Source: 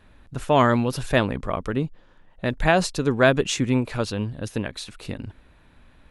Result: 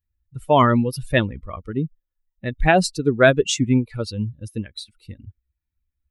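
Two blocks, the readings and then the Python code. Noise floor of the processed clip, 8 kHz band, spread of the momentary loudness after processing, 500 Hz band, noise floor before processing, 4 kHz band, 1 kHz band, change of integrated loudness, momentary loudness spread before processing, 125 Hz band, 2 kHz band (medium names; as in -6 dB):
-82 dBFS, +2.5 dB, 18 LU, +2.0 dB, -54 dBFS, +2.0 dB, +2.5 dB, +3.0 dB, 16 LU, +2.5 dB, +2.5 dB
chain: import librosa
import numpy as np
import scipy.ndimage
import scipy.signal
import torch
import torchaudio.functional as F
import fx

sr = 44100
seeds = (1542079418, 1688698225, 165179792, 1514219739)

y = fx.bin_expand(x, sr, power=2.0)
y = y * 10.0 ** (6.0 / 20.0)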